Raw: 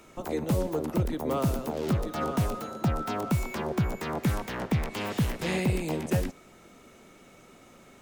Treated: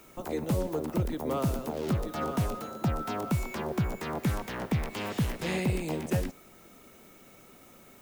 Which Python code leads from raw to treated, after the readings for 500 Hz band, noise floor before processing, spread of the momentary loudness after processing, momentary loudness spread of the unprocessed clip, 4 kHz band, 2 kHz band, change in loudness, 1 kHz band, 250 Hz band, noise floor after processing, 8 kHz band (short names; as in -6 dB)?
-2.0 dB, -54 dBFS, 4 LU, 4 LU, -2.0 dB, -2.0 dB, -2.0 dB, -2.0 dB, -2.0 dB, -55 dBFS, -2.0 dB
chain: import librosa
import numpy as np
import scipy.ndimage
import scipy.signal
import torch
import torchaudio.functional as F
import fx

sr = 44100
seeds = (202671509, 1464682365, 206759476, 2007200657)

y = fx.dmg_noise_colour(x, sr, seeds[0], colour='violet', level_db=-58.0)
y = y * librosa.db_to_amplitude(-2.0)